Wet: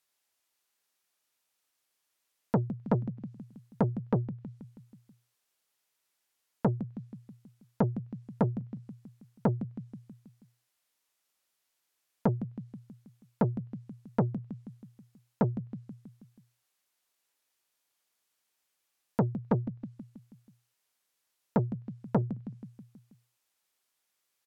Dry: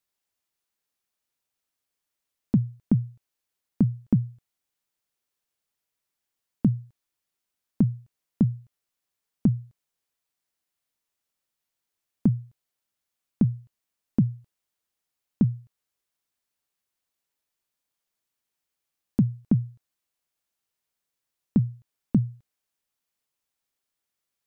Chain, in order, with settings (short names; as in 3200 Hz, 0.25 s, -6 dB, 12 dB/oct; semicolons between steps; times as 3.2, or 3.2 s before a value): treble ducked by the level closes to 1000 Hz, closed at -23.5 dBFS; low shelf 280 Hz -10.5 dB; on a send: feedback echo 0.161 s, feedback 57%, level -14 dB; on the sum: core saturation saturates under 550 Hz; gain +5.5 dB